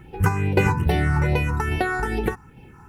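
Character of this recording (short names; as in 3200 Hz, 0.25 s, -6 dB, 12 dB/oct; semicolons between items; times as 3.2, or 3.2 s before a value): phasing stages 4, 2.4 Hz, lowest notch 560–1200 Hz; a quantiser's noise floor 12-bit, dither none; random-step tremolo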